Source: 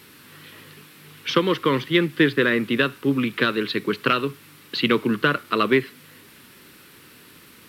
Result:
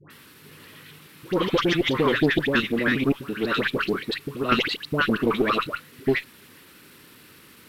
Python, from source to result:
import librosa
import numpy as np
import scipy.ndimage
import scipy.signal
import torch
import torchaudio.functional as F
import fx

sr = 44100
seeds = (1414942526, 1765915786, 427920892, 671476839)

y = fx.block_reorder(x, sr, ms=82.0, group=5)
y = fx.dispersion(y, sr, late='highs', ms=103.0, hz=1100.0)
y = fx.cheby_harmonics(y, sr, harmonics=(2,), levels_db=(-9,), full_scale_db=-4.0)
y = y * librosa.db_to_amplitude(-1.5)